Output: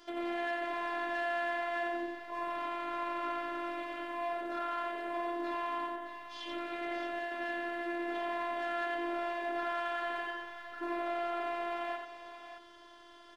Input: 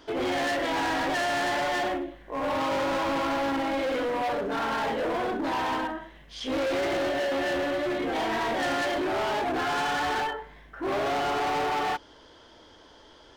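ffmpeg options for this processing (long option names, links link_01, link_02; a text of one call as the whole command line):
ffmpeg -i in.wav -filter_complex "[0:a]acrossover=split=3900[link_01][link_02];[link_02]acompressor=threshold=-55dB:ratio=4:attack=1:release=60[link_03];[link_01][link_03]amix=inputs=2:normalize=0,lowshelf=frequency=400:gain=-8,acompressor=threshold=-35dB:ratio=6,afftfilt=real='hypot(re,im)*cos(PI*b)':imag='0':win_size=512:overlap=0.75,aecho=1:1:87|620:0.631|0.355" out.wav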